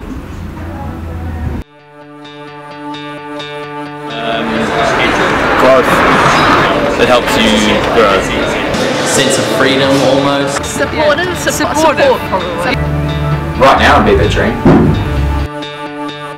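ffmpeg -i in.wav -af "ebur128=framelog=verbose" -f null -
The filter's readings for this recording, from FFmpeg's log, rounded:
Integrated loudness:
  I:         -10.3 LUFS
  Threshold: -21.4 LUFS
Loudness range:
  LRA:        14.9 LU
  Threshold: -31.0 LUFS
  LRA low:   -23.5 LUFS
  LRA high:   -8.6 LUFS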